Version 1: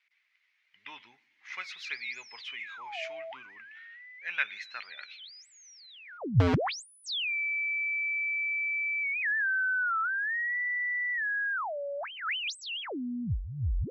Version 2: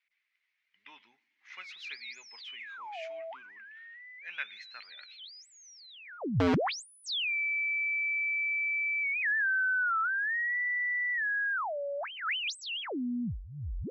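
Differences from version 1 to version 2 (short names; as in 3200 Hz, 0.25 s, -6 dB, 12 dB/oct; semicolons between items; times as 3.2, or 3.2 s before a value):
speech -7.5 dB; master: add resonant low shelf 150 Hz -6.5 dB, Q 1.5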